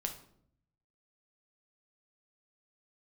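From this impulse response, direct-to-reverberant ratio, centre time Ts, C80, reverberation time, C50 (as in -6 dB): 3.5 dB, 13 ms, 14.0 dB, 0.65 s, 10.0 dB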